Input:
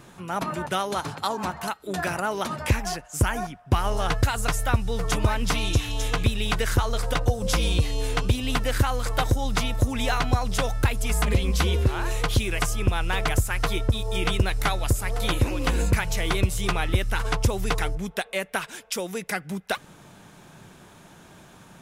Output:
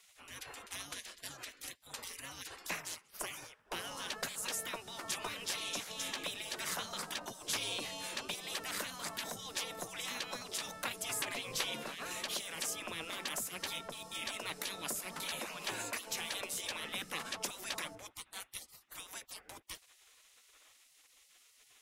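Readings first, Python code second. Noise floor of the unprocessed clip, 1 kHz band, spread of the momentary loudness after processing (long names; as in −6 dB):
−50 dBFS, −16.5 dB, 10 LU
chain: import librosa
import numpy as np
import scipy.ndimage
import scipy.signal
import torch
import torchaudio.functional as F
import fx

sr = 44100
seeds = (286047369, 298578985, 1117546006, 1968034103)

y = fx.spec_gate(x, sr, threshold_db=-20, keep='weak')
y = F.gain(torch.from_numpy(y), -5.5).numpy()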